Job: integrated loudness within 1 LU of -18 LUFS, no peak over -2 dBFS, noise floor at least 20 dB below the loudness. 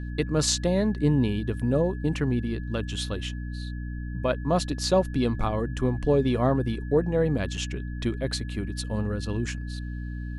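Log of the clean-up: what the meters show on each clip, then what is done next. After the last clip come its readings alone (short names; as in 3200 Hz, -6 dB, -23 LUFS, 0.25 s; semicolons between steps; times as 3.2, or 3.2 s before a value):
hum 60 Hz; harmonics up to 300 Hz; hum level -31 dBFS; steady tone 1700 Hz; tone level -47 dBFS; loudness -27.0 LUFS; peak -8.5 dBFS; loudness target -18.0 LUFS
-> notches 60/120/180/240/300 Hz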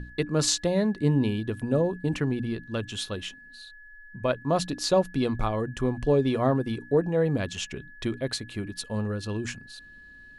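hum none; steady tone 1700 Hz; tone level -47 dBFS
-> notch 1700 Hz, Q 30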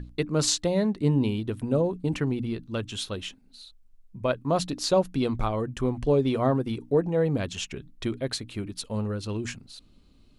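steady tone none; loudness -27.5 LUFS; peak -8.0 dBFS; loudness target -18.0 LUFS
-> gain +9.5 dB; limiter -2 dBFS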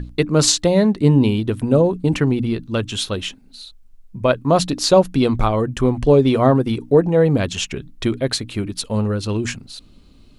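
loudness -18.0 LUFS; peak -2.0 dBFS; noise floor -47 dBFS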